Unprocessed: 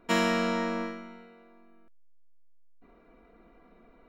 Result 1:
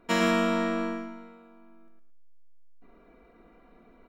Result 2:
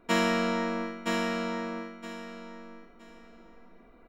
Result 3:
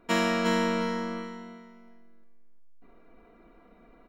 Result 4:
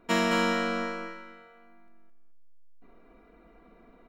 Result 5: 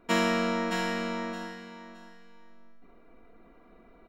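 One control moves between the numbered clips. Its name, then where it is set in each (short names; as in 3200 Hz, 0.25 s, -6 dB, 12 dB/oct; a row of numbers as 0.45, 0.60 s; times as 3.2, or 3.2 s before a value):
feedback echo, time: 0.112, 0.968, 0.356, 0.217, 0.618 s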